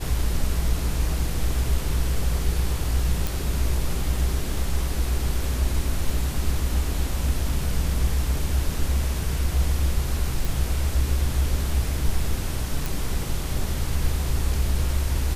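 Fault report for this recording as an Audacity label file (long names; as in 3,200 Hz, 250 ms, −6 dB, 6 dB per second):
3.270000	3.270000	click
10.450000	10.450000	click
12.860000	12.860000	click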